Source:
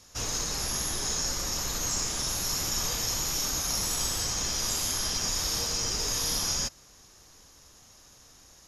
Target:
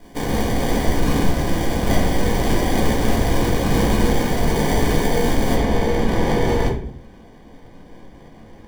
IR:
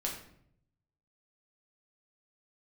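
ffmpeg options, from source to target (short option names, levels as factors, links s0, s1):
-filter_complex "[0:a]aemphasis=mode=production:type=cd,acrusher=samples=33:mix=1:aa=0.000001,asetnsamples=n=441:p=0,asendcmd='5.55 highshelf g -10.5',highshelf=f=6000:g=2[s0];[1:a]atrim=start_sample=2205,asetrate=57330,aresample=44100[s1];[s0][s1]afir=irnorm=-1:irlink=0,volume=1.78"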